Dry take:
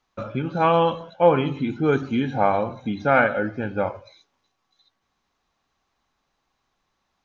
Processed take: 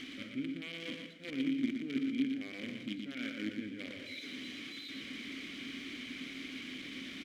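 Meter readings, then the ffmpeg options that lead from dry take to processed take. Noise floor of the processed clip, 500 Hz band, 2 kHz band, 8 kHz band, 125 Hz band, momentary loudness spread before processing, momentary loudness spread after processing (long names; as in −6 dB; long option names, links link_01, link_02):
−48 dBFS, −28.0 dB, −14.0 dB, can't be measured, −23.0 dB, 9 LU, 9 LU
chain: -filter_complex "[0:a]aeval=exprs='val(0)+0.5*0.0794*sgn(val(0))':channel_layout=same,areverse,acompressor=threshold=-26dB:ratio=12,areverse,acrusher=bits=5:dc=4:mix=0:aa=0.000001,asplit=3[link_01][link_02][link_03];[link_01]bandpass=frequency=270:width_type=q:width=8,volume=0dB[link_04];[link_02]bandpass=frequency=2290:width_type=q:width=8,volume=-6dB[link_05];[link_03]bandpass=frequency=3010:width_type=q:width=8,volume=-9dB[link_06];[link_04][link_05][link_06]amix=inputs=3:normalize=0,aecho=1:1:118:0.531,volume=3.5dB"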